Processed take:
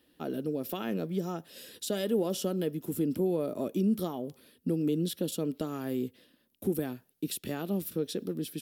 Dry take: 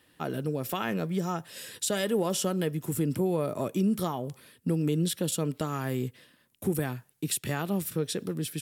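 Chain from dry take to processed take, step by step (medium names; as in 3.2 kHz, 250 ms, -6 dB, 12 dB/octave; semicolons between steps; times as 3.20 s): ten-band graphic EQ 125 Hz -12 dB, 250 Hz +4 dB, 1 kHz -8 dB, 2 kHz -8 dB, 8 kHz -10 dB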